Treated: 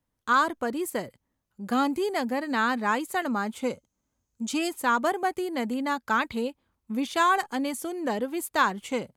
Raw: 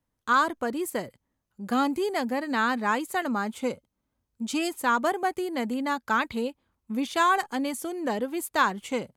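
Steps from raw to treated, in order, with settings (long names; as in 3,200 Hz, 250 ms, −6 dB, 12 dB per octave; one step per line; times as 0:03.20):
0:03.72–0:04.49: parametric band 6,600 Hz +13.5 dB 0.36 octaves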